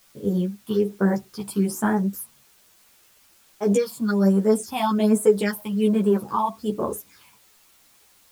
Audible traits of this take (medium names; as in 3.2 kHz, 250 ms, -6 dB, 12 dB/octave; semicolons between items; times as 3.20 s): phasing stages 6, 1.2 Hz, lowest notch 410–4900 Hz; a quantiser's noise floor 10-bit, dither triangular; a shimmering, thickened sound